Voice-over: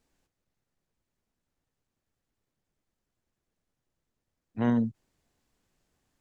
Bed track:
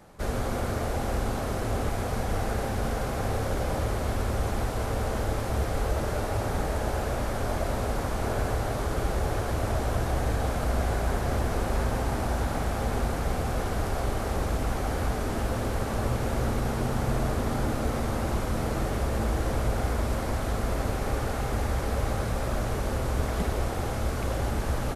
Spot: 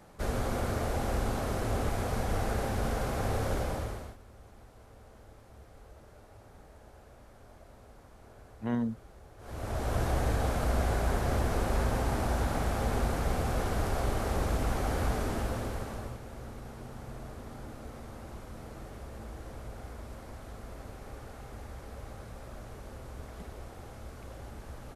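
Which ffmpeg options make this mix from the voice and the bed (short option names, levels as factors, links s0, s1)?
-filter_complex "[0:a]adelay=4050,volume=0.531[s0];[1:a]volume=11.2,afade=t=out:st=3.54:d=0.63:silence=0.0707946,afade=t=in:st=9.38:d=0.64:silence=0.0668344,afade=t=out:st=15.16:d=1.05:silence=0.188365[s1];[s0][s1]amix=inputs=2:normalize=0"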